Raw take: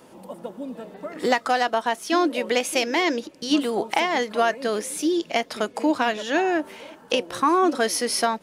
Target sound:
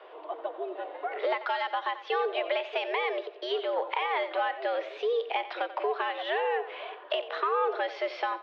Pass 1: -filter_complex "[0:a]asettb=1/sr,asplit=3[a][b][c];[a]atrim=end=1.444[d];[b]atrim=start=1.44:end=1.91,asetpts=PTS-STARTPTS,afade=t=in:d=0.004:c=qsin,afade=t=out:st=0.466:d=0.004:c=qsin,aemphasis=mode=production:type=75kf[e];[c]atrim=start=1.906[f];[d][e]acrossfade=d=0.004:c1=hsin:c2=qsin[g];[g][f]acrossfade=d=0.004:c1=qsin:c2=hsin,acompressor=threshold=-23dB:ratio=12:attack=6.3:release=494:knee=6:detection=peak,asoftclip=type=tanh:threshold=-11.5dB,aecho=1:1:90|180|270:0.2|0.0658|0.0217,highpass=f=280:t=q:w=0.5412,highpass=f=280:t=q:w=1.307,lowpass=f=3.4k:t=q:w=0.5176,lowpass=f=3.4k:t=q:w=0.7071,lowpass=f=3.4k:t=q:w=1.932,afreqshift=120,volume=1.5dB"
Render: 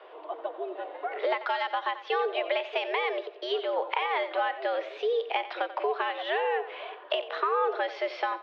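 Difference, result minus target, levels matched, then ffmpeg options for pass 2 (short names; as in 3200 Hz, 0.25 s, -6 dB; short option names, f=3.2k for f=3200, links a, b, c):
soft clip: distortion -11 dB
-filter_complex "[0:a]asettb=1/sr,asplit=3[a][b][c];[a]atrim=end=1.444[d];[b]atrim=start=1.44:end=1.91,asetpts=PTS-STARTPTS,afade=t=in:d=0.004:c=qsin,afade=t=out:st=0.466:d=0.004:c=qsin,aemphasis=mode=production:type=75kf[e];[c]atrim=start=1.906[f];[d][e]acrossfade=d=0.004:c1=hsin:c2=qsin[g];[g][f]acrossfade=d=0.004:c1=qsin:c2=hsin,acompressor=threshold=-23dB:ratio=12:attack=6.3:release=494:knee=6:detection=peak,asoftclip=type=tanh:threshold=-19dB,aecho=1:1:90|180|270:0.2|0.0658|0.0217,highpass=f=280:t=q:w=0.5412,highpass=f=280:t=q:w=1.307,lowpass=f=3.4k:t=q:w=0.5176,lowpass=f=3.4k:t=q:w=0.7071,lowpass=f=3.4k:t=q:w=1.932,afreqshift=120,volume=1.5dB"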